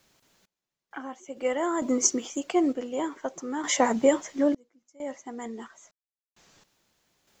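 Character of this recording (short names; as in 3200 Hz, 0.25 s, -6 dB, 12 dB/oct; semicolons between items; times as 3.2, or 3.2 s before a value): a quantiser's noise floor 12-bit, dither triangular; random-step tremolo 2.2 Hz, depth 100%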